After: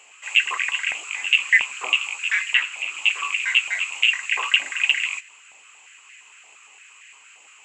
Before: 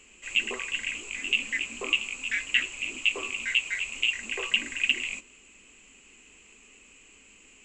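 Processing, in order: 2.39–3.06 s: dynamic bell 6.5 kHz, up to -5 dB, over -41 dBFS, Q 1; step-sequenced high-pass 8.7 Hz 750–1800 Hz; trim +4.5 dB

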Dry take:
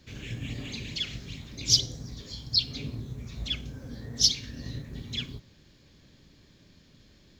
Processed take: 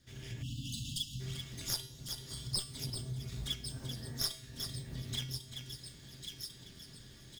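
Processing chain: comb filter that takes the minimum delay 0.58 ms; level rider gain up to 12.5 dB; treble shelf 4.3 kHz +6 dB; feedback comb 130 Hz, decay 0.37 s, harmonics odd, mix 80%; in parallel at -9 dB: bit crusher 4-bit; on the sum: delay 386 ms -14.5 dB; spectral selection erased 0.42–1.20 s, 310–2600 Hz; on a send: feedback echo behind a high-pass 1097 ms, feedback 40%, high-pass 2.8 kHz, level -14.5 dB; on the sum: compression 2.5:1, threshold -42 dBFS, peak gain reduction 17.5 dB; trim +1.5 dB

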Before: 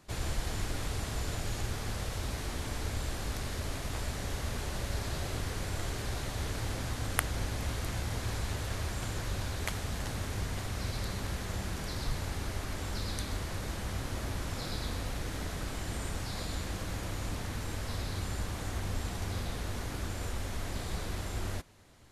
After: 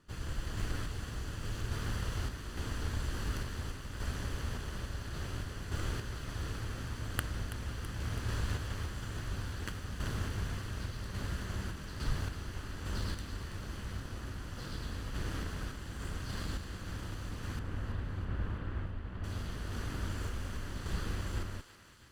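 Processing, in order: comb filter that takes the minimum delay 0.65 ms; 17.59–19.24 s: distance through air 440 m; random-step tremolo; treble shelf 4.9 kHz -8.5 dB; thinning echo 329 ms, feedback 64%, high-pass 970 Hz, level -11.5 dB; trim +1.5 dB

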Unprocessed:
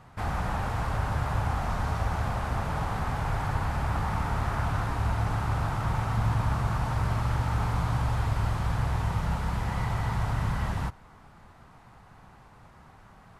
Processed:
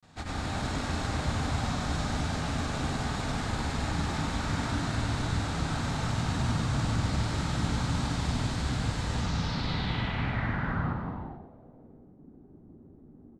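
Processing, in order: in parallel at -11 dB: sample-and-hold 29×; on the sum: bass shelf 480 Hz -5.5 dB; granulator, pitch spread up and down by 0 st; fifteen-band graphic EQ 250 Hz +10 dB, 1 kHz -5 dB, 4 kHz +8 dB; frequency-shifting echo 95 ms, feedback 35%, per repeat +59 Hz, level -10 dB; gated-style reverb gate 480 ms flat, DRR -0.5 dB; low-pass sweep 7.7 kHz -> 350 Hz, 9.12–12.15 s; trim -2.5 dB

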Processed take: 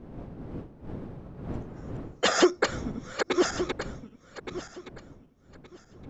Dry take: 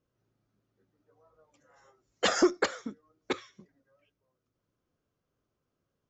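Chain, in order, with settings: backward echo that repeats 585 ms, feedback 45%, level -3.5 dB; wind noise 280 Hz -44 dBFS; trim +2.5 dB

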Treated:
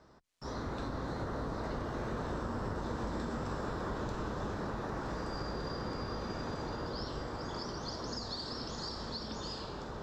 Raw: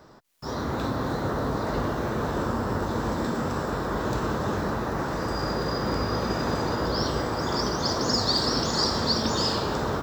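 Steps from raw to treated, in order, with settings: octave divider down 2 oct, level -4 dB; Doppler pass-by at 3.17 s, 7 m/s, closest 7.7 m; treble shelf 6.2 kHz +8.5 dB; compression 6:1, threshold -34 dBFS, peak gain reduction 11 dB; distance through air 79 m

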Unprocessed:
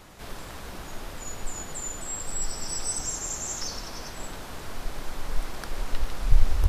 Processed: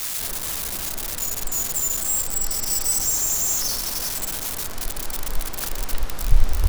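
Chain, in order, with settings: zero-crossing glitches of -20.5 dBFS; trim +2.5 dB

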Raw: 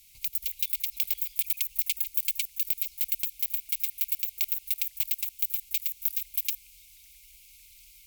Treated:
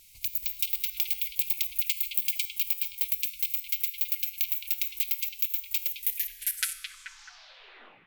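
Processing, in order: tape stop on the ending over 2.24 s; dynamic bell 9.8 kHz, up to -4 dB, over -42 dBFS, Q 1.2; vibrato 9.3 Hz 30 cents; feedback comb 90 Hz, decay 0.84 s, harmonics all, mix 60%; repeats whose band climbs or falls 216 ms, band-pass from 3 kHz, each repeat -0.7 oct, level -4.5 dB; trim +8 dB

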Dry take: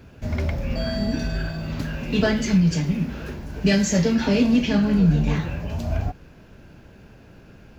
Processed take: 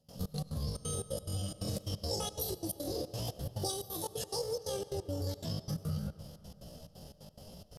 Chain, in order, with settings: FFT filter 100 Hz 0 dB, 180 Hz -14 dB, 300 Hz +3 dB, 530 Hz -13 dB, 1.2 kHz -13 dB, 1.8 kHz -1 dB, 2.7 kHz +6 dB, 4.2 kHz +2 dB, 6.1 kHz +12 dB, 9.6 kHz -5 dB; compression 20:1, threshold -30 dBFS, peak gain reduction 15.5 dB; pitch shift +11.5 st; trance gate ".xx.x.xxx" 177 bpm -24 dB; algorithmic reverb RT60 3.2 s, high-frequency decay 0.5×, pre-delay 55 ms, DRR 14.5 dB; trim -1.5 dB

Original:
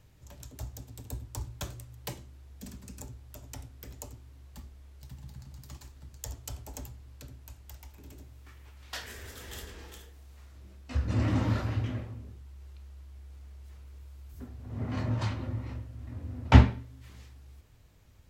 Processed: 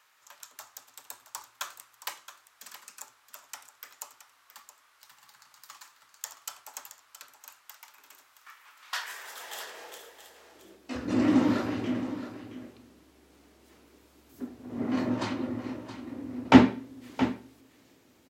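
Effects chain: high-pass sweep 1.2 kHz -> 280 Hz, 8.79–11.05 s; delay 671 ms -12 dB; trim +3.5 dB

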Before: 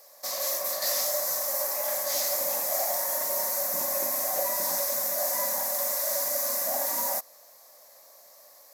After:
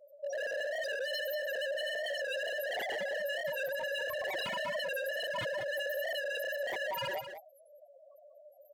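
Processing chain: dynamic bell 460 Hz, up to +4 dB, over -48 dBFS, Q 1.1; loudest bins only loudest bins 2; wavefolder -39.5 dBFS; delay 191 ms -9.5 dB; warped record 45 rpm, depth 100 cents; trim +8 dB

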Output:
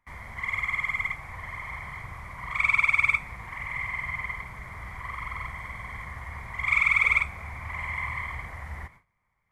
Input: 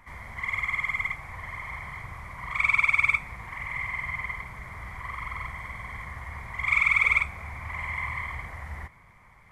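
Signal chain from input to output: gate with hold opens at -40 dBFS

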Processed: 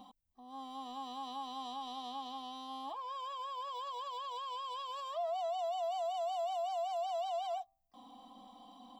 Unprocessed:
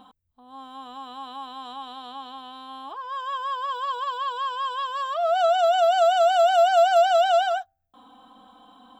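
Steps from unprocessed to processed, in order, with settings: compression, threshold -29 dBFS, peak gain reduction 14 dB; harmony voices +7 st -15 dB; peak limiter -27.5 dBFS, peak gain reduction 5.5 dB; static phaser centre 400 Hz, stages 6; trim -2.5 dB

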